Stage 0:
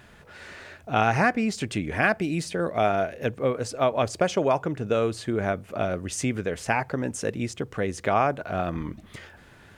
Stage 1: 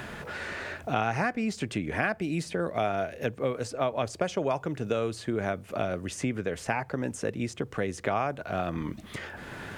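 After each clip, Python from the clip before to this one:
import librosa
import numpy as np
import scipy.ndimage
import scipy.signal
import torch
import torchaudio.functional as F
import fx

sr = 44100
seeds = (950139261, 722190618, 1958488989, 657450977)

y = fx.band_squash(x, sr, depth_pct=70)
y = F.gain(torch.from_numpy(y), -5.0).numpy()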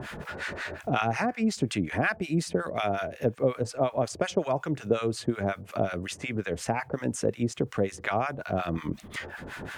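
y = fx.harmonic_tremolo(x, sr, hz=5.5, depth_pct=100, crossover_hz=880.0)
y = F.gain(torch.from_numpy(y), 6.0).numpy()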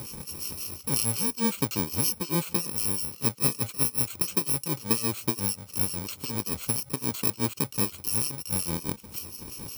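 y = fx.bit_reversed(x, sr, seeds[0], block=64)
y = fx.notch(y, sr, hz=1700.0, q=5.5)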